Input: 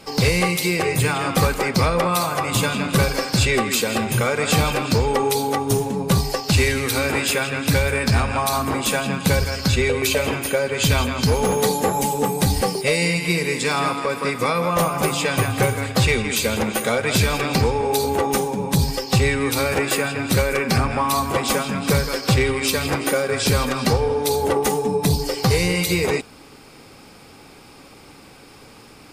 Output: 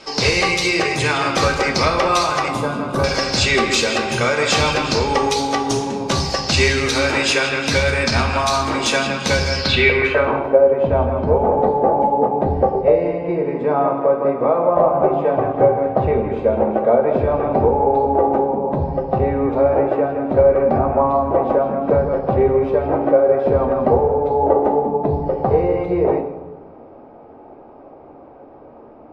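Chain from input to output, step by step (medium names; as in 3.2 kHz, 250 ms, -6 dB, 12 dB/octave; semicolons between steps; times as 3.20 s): 2.48–3.04 s: high-order bell 3.6 kHz -16 dB 2.5 oct; low-pass sweep 5.9 kHz -> 680 Hz, 9.52–10.49 s; tone controls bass -9 dB, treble -6 dB; reverberation RT60 1.1 s, pre-delay 3 ms, DRR 3.5 dB; trim +2.5 dB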